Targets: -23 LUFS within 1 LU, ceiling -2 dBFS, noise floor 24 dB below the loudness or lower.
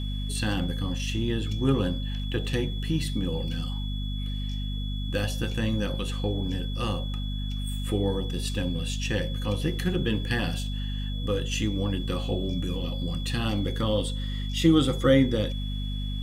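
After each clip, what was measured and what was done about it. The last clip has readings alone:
hum 50 Hz; harmonics up to 250 Hz; hum level -28 dBFS; steady tone 3400 Hz; tone level -40 dBFS; loudness -28.5 LUFS; peak -8.0 dBFS; loudness target -23.0 LUFS
-> notches 50/100/150/200/250 Hz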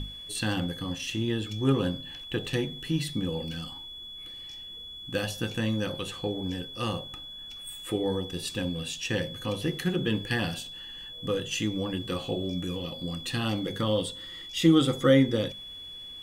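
hum none; steady tone 3400 Hz; tone level -40 dBFS
-> notch 3400 Hz, Q 30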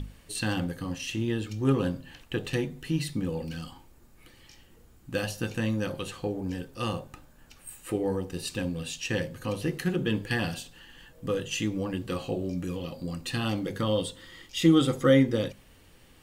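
steady tone none; loudness -29.5 LUFS; peak -9.0 dBFS; loudness target -23.0 LUFS
-> gain +6.5 dB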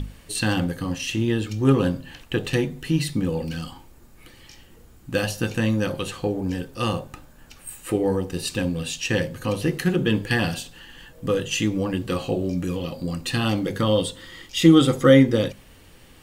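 loudness -23.0 LUFS; peak -2.5 dBFS; noise floor -50 dBFS

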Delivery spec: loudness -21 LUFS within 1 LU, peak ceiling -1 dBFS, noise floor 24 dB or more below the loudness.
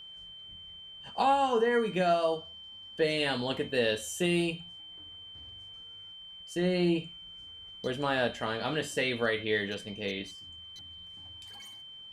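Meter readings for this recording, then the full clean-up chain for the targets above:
steady tone 3100 Hz; tone level -45 dBFS; loudness -30.0 LUFS; peak -16.5 dBFS; loudness target -21.0 LUFS
-> notch 3100 Hz, Q 30; gain +9 dB

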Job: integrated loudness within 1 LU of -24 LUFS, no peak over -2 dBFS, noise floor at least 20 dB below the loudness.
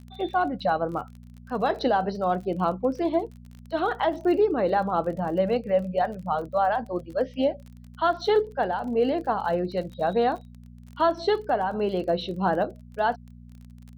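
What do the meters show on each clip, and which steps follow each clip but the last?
ticks 32/s; hum 60 Hz; harmonics up to 240 Hz; hum level -44 dBFS; loudness -26.0 LUFS; peak -12.5 dBFS; loudness target -24.0 LUFS
-> de-click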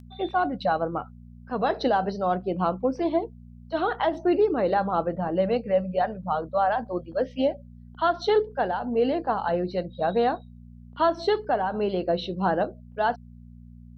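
ticks 0.072/s; hum 60 Hz; harmonics up to 240 Hz; hum level -44 dBFS
-> de-hum 60 Hz, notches 4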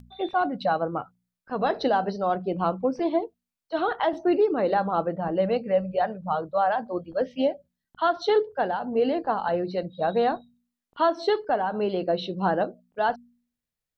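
hum none; loudness -26.0 LUFS; peak -12.5 dBFS; loudness target -24.0 LUFS
-> gain +2 dB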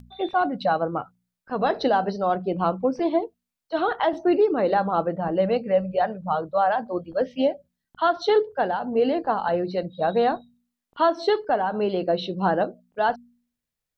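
loudness -24.0 LUFS; peak -10.5 dBFS; noise floor -86 dBFS

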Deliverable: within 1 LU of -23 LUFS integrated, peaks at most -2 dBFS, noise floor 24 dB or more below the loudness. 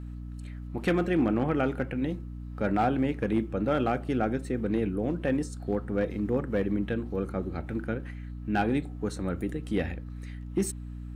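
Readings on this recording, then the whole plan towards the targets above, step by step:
clipped 0.4%; flat tops at -18.0 dBFS; hum 60 Hz; harmonics up to 300 Hz; hum level -36 dBFS; loudness -30.0 LUFS; peak -18.0 dBFS; loudness target -23.0 LUFS
-> clip repair -18 dBFS; de-hum 60 Hz, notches 5; gain +7 dB

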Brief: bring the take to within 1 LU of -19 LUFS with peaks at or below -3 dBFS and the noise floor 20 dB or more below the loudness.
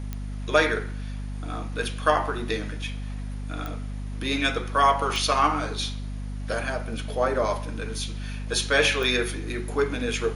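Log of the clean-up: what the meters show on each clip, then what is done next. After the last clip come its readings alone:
clicks 4; hum 50 Hz; harmonics up to 250 Hz; hum level -30 dBFS; loudness -26.5 LUFS; peak -5.5 dBFS; loudness target -19.0 LUFS
-> de-click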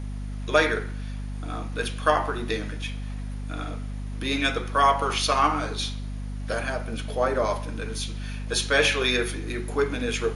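clicks 0; hum 50 Hz; harmonics up to 250 Hz; hum level -30 dBFS
-> notches 50/100/150/200/250 Hz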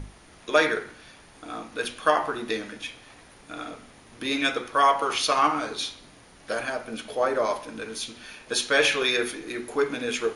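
hum none; loudness -25.5 LUFS; peak -6.0 dBFS; loudness target -19.0 LUFS
-> gain +6.5 dB; limiter -3 dBFS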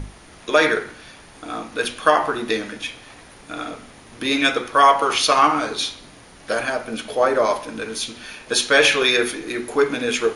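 loudness -19.5 LUFS; peak -3.0 dBFS; noise floor -45 dBFS

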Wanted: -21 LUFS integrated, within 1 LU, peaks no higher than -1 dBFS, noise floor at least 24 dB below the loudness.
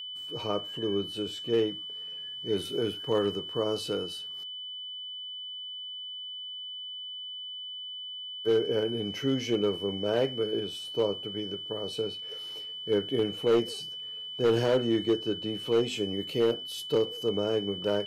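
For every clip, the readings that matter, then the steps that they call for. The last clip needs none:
clipped 0.5%; flat tops at -18.0 dBFS; steady tone 3000 Hz; tone level -37 dBFS; loudness -30.5 LUFS; peak -18.0 dBFS; loudness target -21.0 LUFS
-> clip repair -18 dBFS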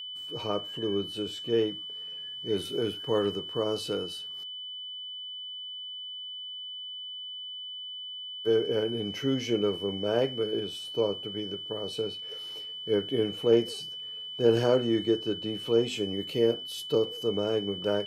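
clipped 0.0%; steady tone 3000 Hz; tone level -37 dBFS
-> notch 3000 Hz, Q 30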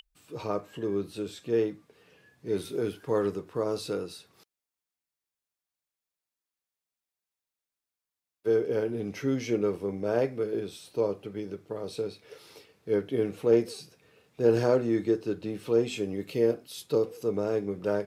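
steady tone none; loudness -29.5 LUFS; peak -10.0 dBFS; loudness target -21.0 LUFS
-> gain +8.5 dB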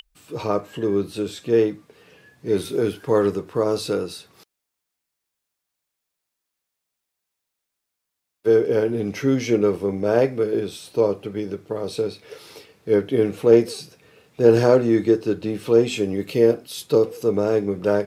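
loudness -21.0 LUFS; peak -1.5 dBFS; noise floor -82 dBFS

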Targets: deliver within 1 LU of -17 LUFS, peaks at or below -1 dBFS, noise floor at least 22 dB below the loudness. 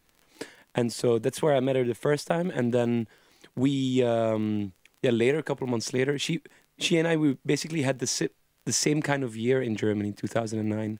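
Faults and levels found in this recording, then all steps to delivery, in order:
ticks 20/s; loudness -27.0 LUFS; peak -7.0 dBFS; loudness target -17.0 LUFS
-> de-click; gain +10 dB; limiter -1 dBFS

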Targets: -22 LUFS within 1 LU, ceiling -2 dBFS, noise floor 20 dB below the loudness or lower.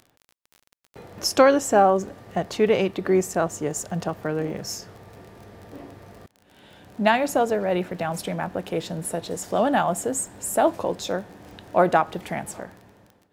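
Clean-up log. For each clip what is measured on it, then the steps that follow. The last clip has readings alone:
ticks 27/s; loudness -23.5 LUFS; peak -4.0 dBFS; loudness target -22.0 LUFS
-> de-click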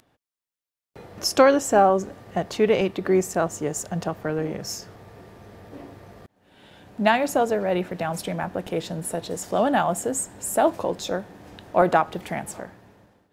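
ticks 0.075/s; loudness -23.5 LUFS; peak -4.0 dBFS; loudness target -22.0 LUFS
-> gain +1.5 dB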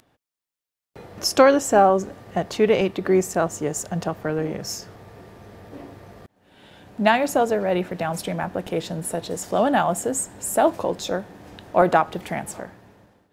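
loudness -22.0 LUFS; peak -2.5 dBFS; noise floor -89 dBFS

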